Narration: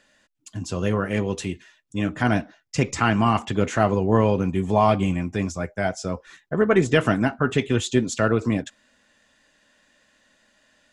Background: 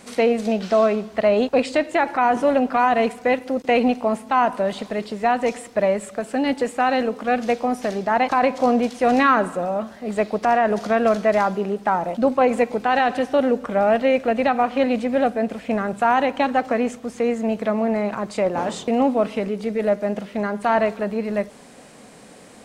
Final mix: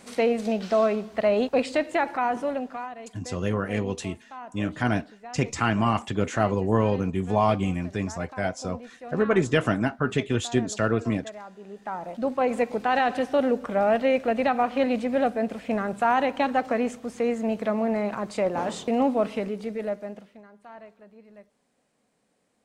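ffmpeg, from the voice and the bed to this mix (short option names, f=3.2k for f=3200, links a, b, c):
-filter_complex "[0:a]adelay=2600,volume=-3.5dB[a];[1:a]volume=14dB,afade=t=out:st=1.96:d=0.99:silence=0.125893,afade=t=in:st=11.57:d=1.24:silence=0.11885,afade=t=out:st=19.32:d=1.1:silence=0.0749894[b];[a][b]amix=inputs=2:normalize=0"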